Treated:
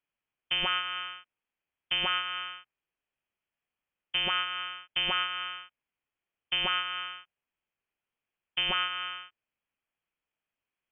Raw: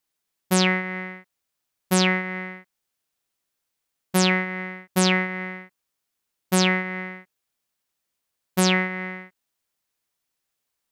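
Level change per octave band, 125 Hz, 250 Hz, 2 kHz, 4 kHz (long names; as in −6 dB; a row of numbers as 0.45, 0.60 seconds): −25.0, −26.0, −7.5, +0.5 decibels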